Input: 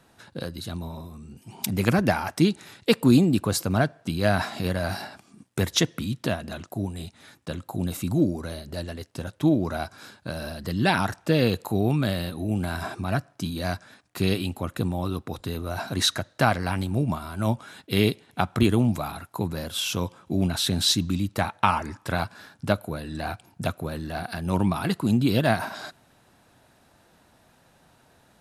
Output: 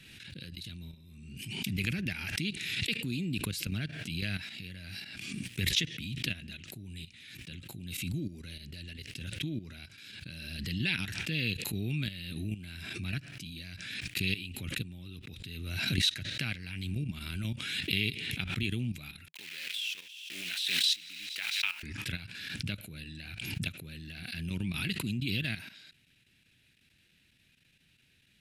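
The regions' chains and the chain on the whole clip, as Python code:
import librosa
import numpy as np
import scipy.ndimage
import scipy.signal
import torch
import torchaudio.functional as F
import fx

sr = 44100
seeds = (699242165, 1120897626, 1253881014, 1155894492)

y = fx.chain(x, sr, fx.delta_hold(step_db=-33.5),
    fx.highpass(hz=860.0, slope=12),
    fx.echo_wet_highpass(ms=89, feedback_pct=78, hz=2300.0, wet_db=-21), at=(19.28, 21.83))
y = fx.level_steps(y, sr, step_db=12)
y = fx.curve_eq(y, sr, hz=(160.0, 240.0, 390.0, 710.0, 1100.0, 1700.0, 2500.0, 6300.0), db=(0, -4, -8, -22, -20, -1, 12, -1))
y = fx.pre_swell(y, sr, db_per_s=31.0)
y = F.gain(torch.from_numpy(y), -7.0).numpy()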